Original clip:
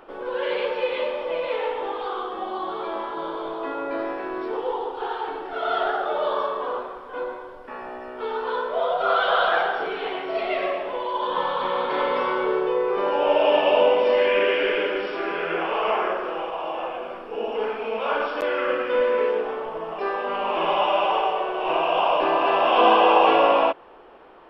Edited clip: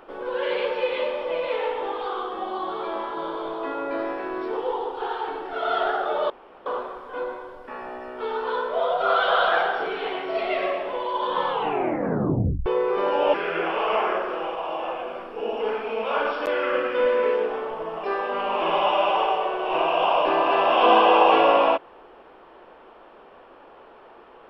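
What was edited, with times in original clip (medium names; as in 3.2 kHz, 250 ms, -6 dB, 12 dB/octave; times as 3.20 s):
6.30–6.66 s: room tone
11.47 s: tape stop 1.19 s
13.34–15.29 s: delete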